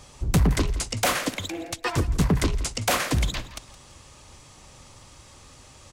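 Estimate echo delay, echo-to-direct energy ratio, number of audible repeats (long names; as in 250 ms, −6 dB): 168 ms, −16.5 dB, 3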